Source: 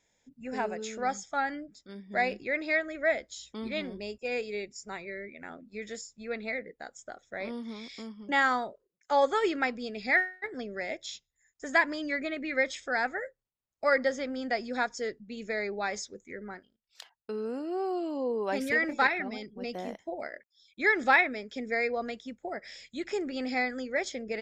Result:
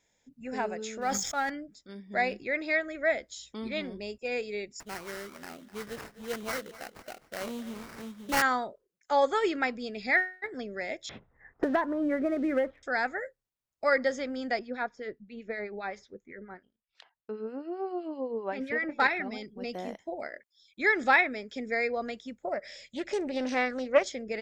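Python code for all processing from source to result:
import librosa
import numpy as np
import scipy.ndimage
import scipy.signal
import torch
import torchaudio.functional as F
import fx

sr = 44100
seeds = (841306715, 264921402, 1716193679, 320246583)

y = fx.chain(x, sr, fx.law_mismatch(coded='A'),
    fx.sustainer(db_per_s=44.0), at=(1.01, 1.5))
y = fx.chain(y, sr, fx.sample_hold(seeds[0], rate_hz=3500.0, jitter_pct=20),
    fx.echo_feedback(ms=254, feedback_pct=26, wet_db=-16), at=(4.8, 8.42))
y = fx.chain(y, sr, fx.lowpass(hz=1300.0, slope=24),
    fx.leveller(passes=1),
    fx.band_squash(depth_pct=100), at=(11.09, 12.83))
y = fx.chain(y, sr, fx.lowpass(hz=2800.0, slope=12),
    fx.harmonic_tremolo(hz=7.7, depth_pct=70, crossover_hz=1500.0), at=(14.59, 19.0))
y = fx.chain(y, sr, fx.peak_eq(hz=580.0, db=12.5, octaves=0.27),
    fx.doppler_dist(depth_ms=0.2), at=(22.45, 24.07))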